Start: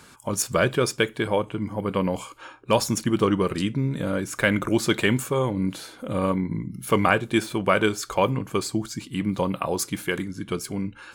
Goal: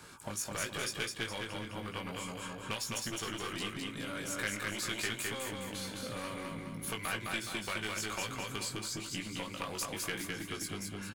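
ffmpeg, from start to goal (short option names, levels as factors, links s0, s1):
-filter_complex "[0:a]acrossover=split=330|1700[s0][s1][s2];[s0]acompressor=threshold=0.0355:ratio=4[s3];[s1]acompressor=threshold=0.0447:ratio=4[s4];[s2]acompressor=threshold=0.0224:ratio=4[s5];[s3][s4][s5]amix=inputs=3:normalize=0,flanger=delay=17.5:depth=2:speed=0.98,aeval=exprs='clip(val(0),-1,0.0335)':c=same,aecho=1:1:209|418|627|836|1045|1254:0.708|0.319|0.143|0.0645|0.029|0.0131,acrossover=split=1500[s6][s7];[s6]acompressor=threshold=0.01:ratio=6[s8];[s8][s7]amix=inputs=2:normalize=0"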